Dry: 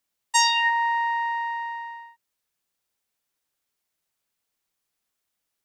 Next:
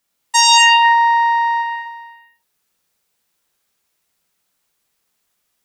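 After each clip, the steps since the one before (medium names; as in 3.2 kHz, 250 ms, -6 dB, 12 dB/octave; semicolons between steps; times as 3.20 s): time-frequency box 1.62–2.35 s, 850–9600 Hz -8 dB; gated-style reverb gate 290 ms flat, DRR -2.5 dB; loudness maximiser +7.5 dB; trim -1 dB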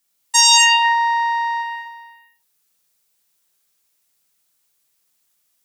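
treble shelf 3.7 kHz +10 dB; trim -5.5 dB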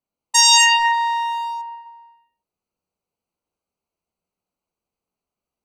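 local Wiener filter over 25 samples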